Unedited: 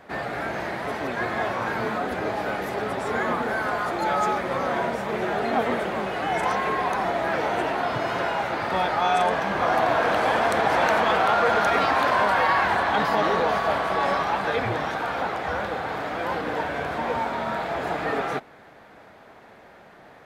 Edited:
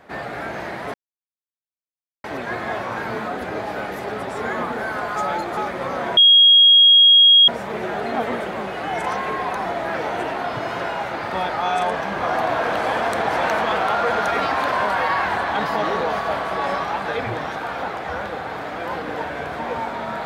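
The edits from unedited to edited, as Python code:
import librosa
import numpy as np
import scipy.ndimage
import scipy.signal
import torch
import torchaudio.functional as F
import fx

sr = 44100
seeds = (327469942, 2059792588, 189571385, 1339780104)

y = fx.edit(x, sr, fx.insert_silence(at_s=0.94, length_s=1.3),
    fx.reverse_span(start_s=3.86, length_s=0.41),
    fx.insert_tone(at_s=4.87, length_s=1.31, hz=3280.0, db=-7.5), tone=tone)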